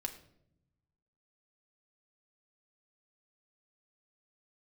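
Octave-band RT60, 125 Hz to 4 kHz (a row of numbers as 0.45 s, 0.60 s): 1.6 s, 1.3 s, 0.90 s, 0.60 s, 0.55 s, 0.50 s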